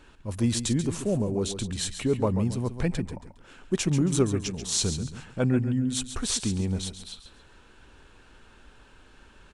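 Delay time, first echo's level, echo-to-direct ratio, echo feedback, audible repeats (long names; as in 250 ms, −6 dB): 137 ms, −10.0 dB, −9.5 dB, 29%, 3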